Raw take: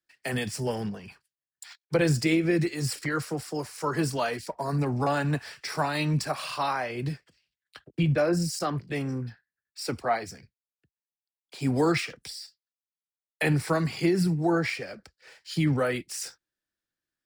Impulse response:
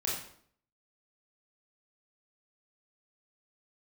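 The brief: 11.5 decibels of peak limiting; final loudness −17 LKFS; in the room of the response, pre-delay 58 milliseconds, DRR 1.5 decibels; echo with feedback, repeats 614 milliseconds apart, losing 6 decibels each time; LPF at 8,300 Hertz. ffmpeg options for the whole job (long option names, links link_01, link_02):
-filter_complex "[0:a]lowpass=8300,alimiter=limit=-23.5dB:level=0:latency=1,aecho=1:1:614|1228|1842|2456|3070|3684:0.501|0.251|0.125|0.0626|0.0313|0.0157,asplit=2[link_01][link_02];[1:a]atrim=start_sample=2205,adelay=58[link_03];[link_02][link_03]afir=irnorm=-1:irlink=0,volume=-6.5dB[link_04];[link_01][link_04]amix=inputs=2:normalize=0,volume=13.5dB"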